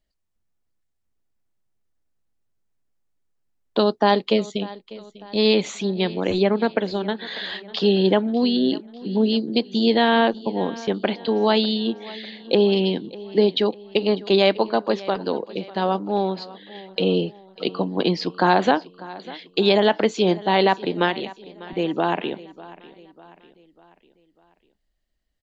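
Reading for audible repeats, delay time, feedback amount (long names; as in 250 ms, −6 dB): 3, 597 ms, 48%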